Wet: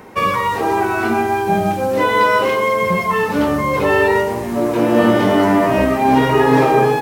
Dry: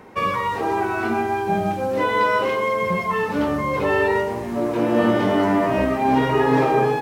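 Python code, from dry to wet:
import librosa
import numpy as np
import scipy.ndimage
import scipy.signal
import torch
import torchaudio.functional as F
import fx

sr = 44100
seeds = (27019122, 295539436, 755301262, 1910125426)

y = fx.high_shelf(x, sr, hz=7100.0, db=8.0)
y = F.gain(torch.from_numpy(y), 5.0).numpy()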